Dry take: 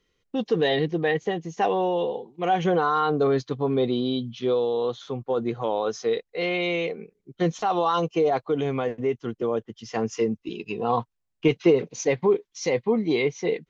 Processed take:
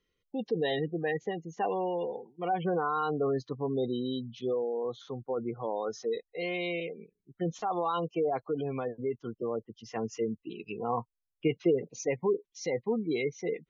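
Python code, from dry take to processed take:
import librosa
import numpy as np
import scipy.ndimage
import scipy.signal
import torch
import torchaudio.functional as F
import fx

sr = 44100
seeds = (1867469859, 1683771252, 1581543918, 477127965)

y = fx.env_phaser(x, sr, low_hz=450.0, high_hz=1300.0, full_db=-28.5, at=(6.8, 7.48))
y = fx.spec_gate(y, sr, threshold_db=-25, keep='strong')
y = y * 10.0 ** (-7.5 / 20.0)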